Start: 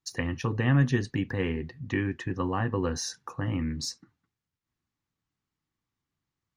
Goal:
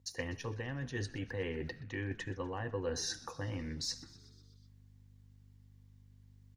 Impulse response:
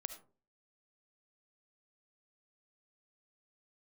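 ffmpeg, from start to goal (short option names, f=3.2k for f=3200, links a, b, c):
-filter_complex "[0:a]aeval=exprs='val(0)+0.00126*(sin(2*PI*50*n/s)+sin(2*PI*2*50*n/s)/2+sin(2*PI*3*50*n/s)/3+sin(2*PI*4*50*n/s)/4+sin(2*PI*5*50*n/s)/5)':c=same,areverse,acompressor=threshold=-38dB:ratio=10,areverse,equalizer=f=100:t=o:w=0.33:g=7,equalizer=f=200:t=o:w=0.33:g=-5,equalizer=f=500:t=o:w=0.33:g=7,equalizer=f=1.25k:t=o:w=0.33:g=-9,equalizer=f=2.5k:t=o:w=0.33:g=-3,acrossover=split=4700[a][b];[b]acompressor=threshold=-49dB:ratio=4:attack=1:release=60[c];[a][c]amix=inputs=2:normalize=0,highpass=49,lowshelf=f=400:g=-7,asplit=7[d][e][f][g][h][i][j];[e]adelay=124,afreqshift=-89,volume=-19dB[k];[f]adelay=248,afreqshift=-178,volume=-22.7dB[l];[g]adelay=372,afreqshift=-267,volume=-26.5dB[m];[h]adelay=496,afreqshift=-356,volume=-30.2dB[n];[i]adelay=620,afreqshift=-445,volume=-34dB[o];[j]adelay=744,afreqshift=-534,volume=-37.7dB[p];[d][k][l][m][n][o][p]amix=inputs=7:normalize=0,asplit=2[q][r];[1:a]atrim=start_sample=2205,lowshelf=f=400:g=-11.5[s];[r][s]afir=irnorm=-1:irlink=0,volume=-3dB[t];[q][t]amix=inputs=2:normalize=0,volume=4dB"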